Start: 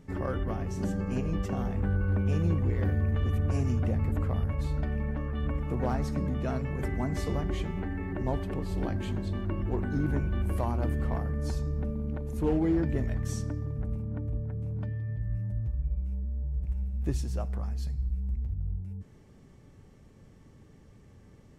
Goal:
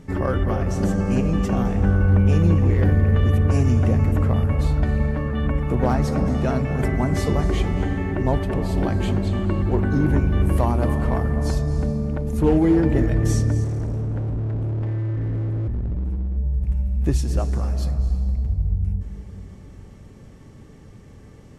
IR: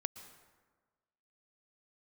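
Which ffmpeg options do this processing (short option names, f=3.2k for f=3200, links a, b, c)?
-filter_complex "[1:a]atrim=start_sample=2205,asetrate=23814,aresample=44100[a];[0:a][a]afir=irnorm=-1:irlink=0,asettb=1/sr,asplit=3[b][c][d];[b]atrim=end=13.644[e];[c]atrim=start=13.64:end=16.37,asetpts=PTS-STARTPTS,afade=t=in:d=0.004:c=qsin,afade=t=out:st=2.726:d=0.004:c=qsin,volume=30dB,asoftclip=hard,volume=-30dB[f];[d]atrim=start=16.366[g];[e][f]acrossfade=d=0.004:c1=hsin:c2=qsin[h];[h][g]acrossfade=d=0.004:c1=qsin:c2=hsin,volume=7.5dB"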